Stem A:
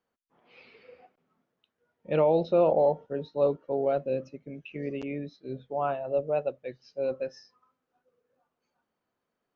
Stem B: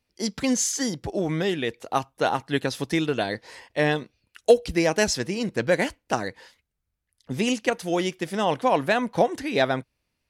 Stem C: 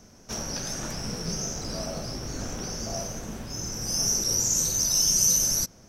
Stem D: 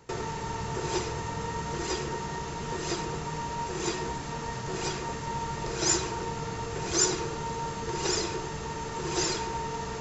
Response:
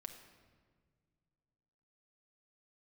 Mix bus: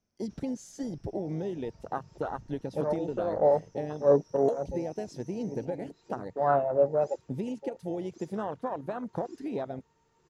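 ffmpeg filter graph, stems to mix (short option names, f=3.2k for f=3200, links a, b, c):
-filter_complex "[0:a]acontrast=77,adelay=650,volume=-1dB,afade=t=out:st=6.69:d=0.52:silence=0.316228[a];[1:a]acompressor=threshold=-27dB:ratio=12,volume=-2dB,asplit=2[b][c];[2:a]lowpass=5.8k,acompressor=threshold=-32dB:ratio=6,volume=-12.5dB[d];[3:a]adelay=1200,volume=-18.5dB[e];[c]apad=whole_len=450128[f];[a][f]sidechaincompress=threshold=-51dB:ratio=5:attack=27:release=111[g];[g][b][d][e]amix=inputs=4:normalize=0,afwtdn=0.0282"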